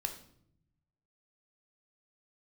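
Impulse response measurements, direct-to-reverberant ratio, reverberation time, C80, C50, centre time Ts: 5.0 dB, 0.70 s, 13.5 dB, 10.0 dB, 12 ms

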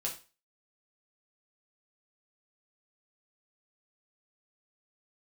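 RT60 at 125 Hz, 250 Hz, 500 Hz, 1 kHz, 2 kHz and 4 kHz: 0.30 s, 0.30 s, 0.35 s, 0.35 s, 0.35 s, 0.30 s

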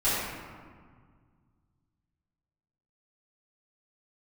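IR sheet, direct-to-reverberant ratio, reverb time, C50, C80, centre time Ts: -14.5 dB, 1.8 s, -2.5 dB, -0.5 dB, 114 ms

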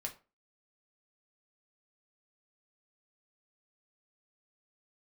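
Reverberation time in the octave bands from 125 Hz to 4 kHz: 0.30 s, 0.35 s, 0.35 s, 0.30 s, 0.25 s, 0.20 s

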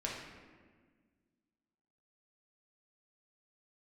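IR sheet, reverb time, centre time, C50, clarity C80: 1.6 s, 68 ms, 1.0 dB, 4.0 dB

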